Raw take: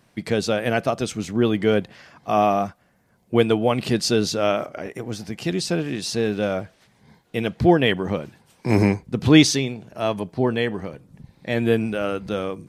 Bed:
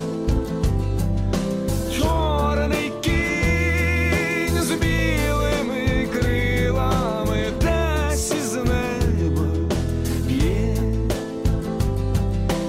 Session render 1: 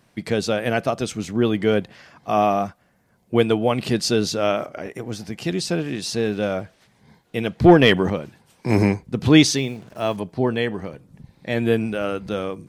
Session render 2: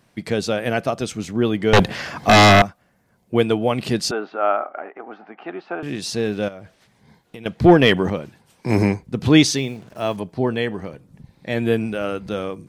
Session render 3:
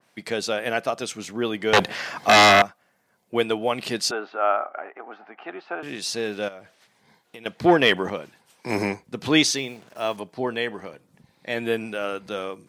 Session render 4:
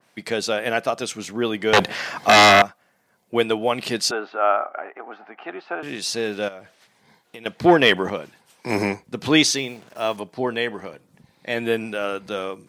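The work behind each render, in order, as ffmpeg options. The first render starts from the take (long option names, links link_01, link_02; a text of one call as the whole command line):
ffmpeg -i in.wav -filter_complex "[0:a]asettb=1/sr,asplit=3[link_01][link_02][link_03];[link_01]atrim=end=7.644[link_04];[link_02]atrim=start=7.64:end=8.1,asetpts=PTS-STARTPTS,afade=type=in:duration=0.004:curve=qsin,afade=type=out:start_time=0.456:duration=0.004:curve=qsin,acontrast=51[link_05];[link_03]atrim=start=8.096[link_06];[link_04][link_05]acrossfade=duration=0.004:curve1=hsin:curve2=qsin[link_07];[link_07][link_06]acrossfade=duration=0.004:curve1=qsin:curve2=hsin,asettb=1/sr,asplit=3[link_08][link_09][link_10];[link_08]atrim=end=9.574[link_11];[link_09]atrim=start=9.57:end=10.17,asetpts=PTS-STARTPTS,afade=type=in:duration=0.004:curve=qsin,afade=type=out:start_time=0.596:duration=0.004:curve=qsin,acrusher=bits=7:mix=0:aa=0.5[link_12];[link_10]atrim=start=10.166[link_13];[link_11][link_12]acrossfade=duration=0.004:curve1=hsin:curve2=qsin[link_14];[link_14][link_13]acrossfade=duration=0.004:curve1=qsin:curve2=hsin" out.wav
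ffmpeg -i in.wav -filter_complex "[0:a]asettb=1/sr,asplit=3[link_01][link_02][link_03];[link_01]atrim=end=1.734[link_04];[link_02]atrim=start=1.73:end=2.62,asetpts=PTS-STARTPTS,afade=type=in:duration=0.004:curve=qsin,afade=type=out:start_time=0.886:duration=0.004:curve=qsin,aeval=exprs='0.447*sin(PI/2*4.47*val(0)/0.447)':channel_layout=same[link_05];[link_03]atrim=start=2.616[link_06];[link_04][link_05]acrossfade=duration=0.004:curve1=hsin:curve2=qsin[link_07];[link_07][link_06]acrossfade=duration=0.004:curve1=qsin:curve2=hsin,asettb=1/sr,asplit=3[link_08][link_09][link_10];[link_08]atrim=end=4.114[link_11];[link_09]atrim=start=4.11:end=5.83,asetpts=PTS-STARTPTS,afade=type=in:duration=0.004:curve=qsin,afade=type=out:start_time=1.716:duration=0.004:curve=qsin,highpass=frequency=320:width=0.5412,highpass=frequency=320:width=1.3066,equalizer=frequency=340:width_type=q:width=4:gain=-4,equalizer=frequency=490:width_type=q:width=4:gain=-7,equalizer=frequency=780:width_type=q:width=4:gain=9,equalizer=frequency=1300:width_type=q:width=4:gain=8,equalizer=frequency=2000:width_type=q:width=4:gain=-4,lowpass=frequency=2100:width=0.5412,lowpass=frequency=2100:width=1.3066[link_12];[link_10]atrim=start=5.826[link_13];[link_11][link_12]acrossfade=duration=0.004:curve1=hsin:curve2=qsin[link_14];[link_14][link_13]acrossfade=duration=0.004:curve1=qsin:curve2=hsin,asettb=1/sr,asplit=3[link_15][link_16][link_17];[link_15]atrim=end=6.484[link_18];[link_16]atrim=start=6.48:end=7.46,asetpts=PTS-STARTPTS,afade=type=in:duration=0.004:curve=qsin,afade=type=out:start_time=0.976:duration=0.004:curve=qsin,acompressor=threshold=-32dB:ratio=12:attack=3.2:release=140:knee=1:detection=peak[link_19];[link_17]atrim=start=7.456[link_20];[link_18][link_19]acrossfade=duration=0.004:curve1=hsin:curve2=qsin[link_21];[link_21][link_20]acrossfade=duration=0.004:curve1=qsin:curve2=hsin" out.wav
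ffmpeg -i in.wav -af "highpass=frequency=620:poles=1,adynamicequalizer=threshold=0.0355:dfrequency=2400:dqfactor=0.7:tfrequency=2400:tqfactor=0.7:attack=5:release=100:ratio=0.375:range=1.5:mode=cutabove:tftype=highshelf" out.wav
ffmpeg -i in.wav -af "volume=2.5dB,alimiter=limit=-2dB:level=0:latency=1" out.wav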